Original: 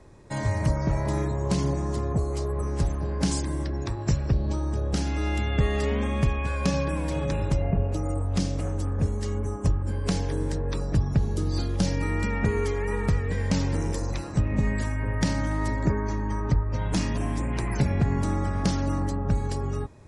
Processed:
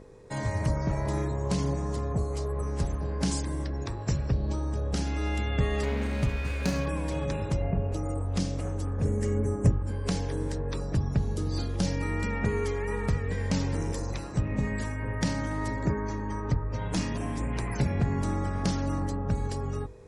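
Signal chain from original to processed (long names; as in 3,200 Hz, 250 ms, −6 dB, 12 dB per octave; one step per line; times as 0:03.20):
0:05.83–0:06.86: lower of the sound and its delayed copy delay 0.45 ms
0:09.05–0:09.72: octave-band graphic EQ 125/250/500/1,000/2,000/4,000/8,000 Hz +7/+5/+6/−4/+7/−12/+6 dB
hum with harmonics 50 Hz, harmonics 10, −45 dBFS −1 dB per octave
mains-hum notches 50/100/150/200/250/300/350 Hz
level −2.5 dB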